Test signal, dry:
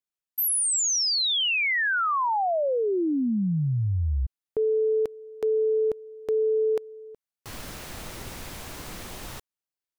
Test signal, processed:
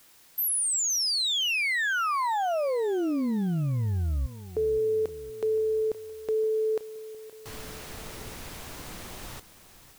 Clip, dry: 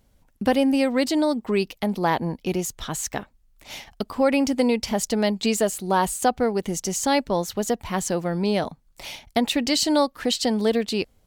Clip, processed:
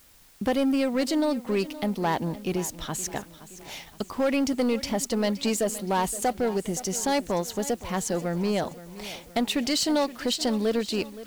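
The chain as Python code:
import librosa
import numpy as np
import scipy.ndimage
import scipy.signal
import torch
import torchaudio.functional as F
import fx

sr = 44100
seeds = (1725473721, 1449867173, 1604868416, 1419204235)

p1 = 10.0 ** (-18.0 / 20.0) * (np.abs((x / 10.0 ** (-18.0 / 20.0) + 3.0) % 4.0 - 2.0) - 1.0)
p2 = x + (p1 * librosa.db_to_amplitude(-4.5))
p3 = fx.dmg_noise_colour(p2, sr, seeds[0], colour='white', level_db=-50.0)
p4 = fx.echo_feedback(p3, sr, ms=520, feedback_pct=48, wet_db=-16)
y = p4 * librosa.db_to_amplitude(-6.5)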